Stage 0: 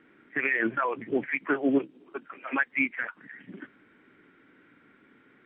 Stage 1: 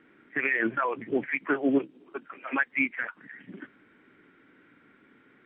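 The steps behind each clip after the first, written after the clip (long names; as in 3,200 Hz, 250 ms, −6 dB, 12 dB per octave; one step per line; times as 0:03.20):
no processing that can be heard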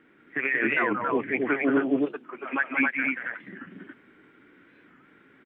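loudspeakers that aren't time-aligned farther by 62 metres −5 dB, 93 metres −2 dB
wow of a warped record 45 rpm, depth 160 cents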